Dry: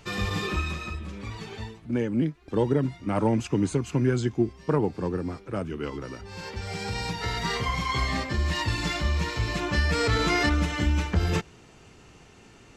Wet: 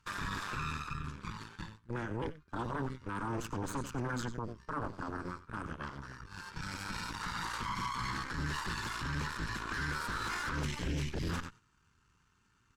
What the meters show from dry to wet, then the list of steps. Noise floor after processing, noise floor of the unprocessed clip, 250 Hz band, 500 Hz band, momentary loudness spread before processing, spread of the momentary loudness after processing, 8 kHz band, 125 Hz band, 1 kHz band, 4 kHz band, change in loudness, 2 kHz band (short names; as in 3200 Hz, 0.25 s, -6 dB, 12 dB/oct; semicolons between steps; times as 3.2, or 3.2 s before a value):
-71 dBFS, -52 dBFS, -13.5 dB, -15.5 dB, 12 LU, 7 LU, -7.0 dB, -12.5 dB, -6.0 dB, -10.5 dB, -11.0 dB, -7.5 dB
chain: spectral delete 10.58–11.29, 310–1800 Hz; passive tone stack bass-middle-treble 6-0-2; outdoor echo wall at 16 m, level -11 dB; added harmonics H 3 -25 dB, 8 -6 dB, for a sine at -25.5 dBFS; band shelf 1200 Hz +14.5 dB 1.1 oct; gate -54 dBFS, range -7 dB; limiter -32 dBFS, peak gain reduction 15 dB; gain +4 dB